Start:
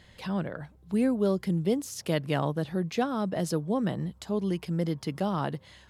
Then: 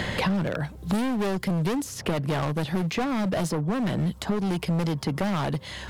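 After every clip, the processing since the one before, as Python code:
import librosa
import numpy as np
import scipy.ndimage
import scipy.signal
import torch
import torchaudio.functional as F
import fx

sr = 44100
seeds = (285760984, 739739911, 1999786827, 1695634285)

y = np.clip(x, -10.0 ** (-31.0 / 20.0), 10.0 ** (-31.0 / 20.0))
y = fx.band_squash(y, sr, depth_pct=100)
y = F.gain(torch.from_numpy(y), 7.5).numpy()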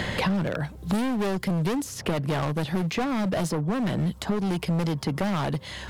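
y = x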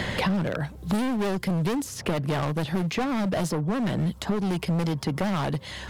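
y = fx.vibrato(x, sr, rate_hz=12.0, depth_cents=44.0)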